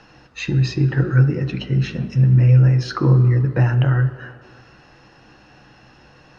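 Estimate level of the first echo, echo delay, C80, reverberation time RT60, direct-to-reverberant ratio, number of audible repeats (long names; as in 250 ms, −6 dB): no echo audible, no echo audible, 13.5 dB, 2.2 s, 8.0 dB, no echo audible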